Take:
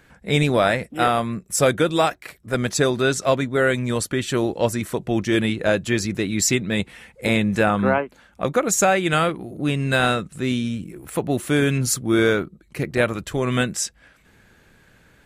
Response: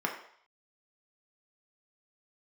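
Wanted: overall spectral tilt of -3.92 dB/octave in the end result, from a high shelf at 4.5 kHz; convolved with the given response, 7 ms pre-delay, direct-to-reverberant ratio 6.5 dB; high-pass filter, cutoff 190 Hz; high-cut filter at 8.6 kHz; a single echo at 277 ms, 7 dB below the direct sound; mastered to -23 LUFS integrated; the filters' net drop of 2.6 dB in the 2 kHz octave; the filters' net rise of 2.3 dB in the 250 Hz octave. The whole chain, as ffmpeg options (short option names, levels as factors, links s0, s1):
-filter_complex "[0:a]highpass=190,lowpass=8600,equalizer=f=250:t=o:g=4.5,equalizer=f=2000:t=o:g=-4.5,highshelf=f=4500:g=4.5,aecho=1:1:277:0.447,asplit=2[s0][s1];[1:a]atrim=start_sample=2205,adelay=7[s2];[s1][s2]afir=irnorm=-1:irlink=0,volume=0.2[s3];[s0][s3]amix=inputs=2:normalize=0,volume=0.708"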